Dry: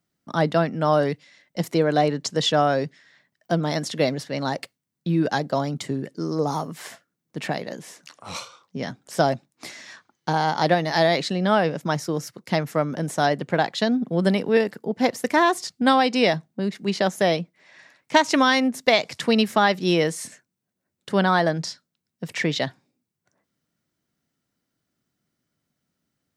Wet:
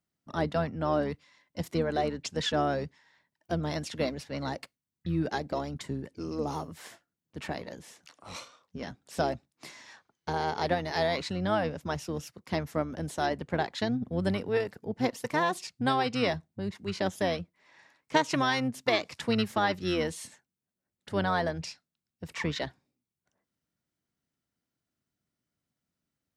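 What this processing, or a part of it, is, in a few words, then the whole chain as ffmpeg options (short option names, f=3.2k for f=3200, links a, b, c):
octave pedal: -filter_complex "[0:a]asettb=1/sr,asplit=3[a][b][c];[a]atrim=end=0.714[d];[b]atrim=start=0.71:end=1.11,asetpts=PTS-STARTPTS,afade=t=in:d=0.004:c=qsin,afade=t=out:st=0.396:d=0.004:c=qsin,highshelf=f=8.3k:g=-11[e];[c]atrim=start=1.106[f];[d][e]acrossfade=d=0.004:c1=hsin:c2=qsin[g];[g][f]acrossfade=d=0.004:c1=qsin:c2=hsin,asplit=2[h][i];[i]asetrate=22050,aresample=44100,atempo=2,volume=-8dB[j];[h][j]amix=inputs=2:normalize=0,volume=-9dB"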